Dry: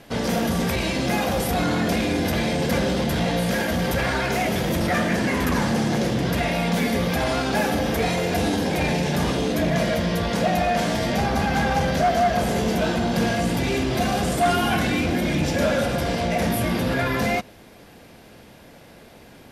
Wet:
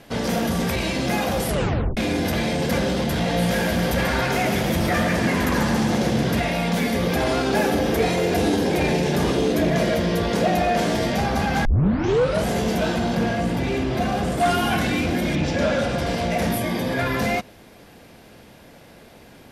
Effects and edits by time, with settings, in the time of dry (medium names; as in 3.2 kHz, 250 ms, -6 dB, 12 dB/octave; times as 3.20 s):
1.46 s: tape stop 0.51 s
3.16–6.40 s: two-band feedback delay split 420 Hz, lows 205 ms, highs 138 ms, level -6.5 dB
7.03–11.08 s: peaking EQ 380 Hz +7 dB 0.64 oct
11.65 s: tape start 0.81 s
13.15–14.40 s: treble shelf 3.6 kHz -9.5 dB
15.35–16.05 s: low-pass 5 kHz -> 8.6 kHz
16.58–16.98 s: comb of notches 1.4 kHz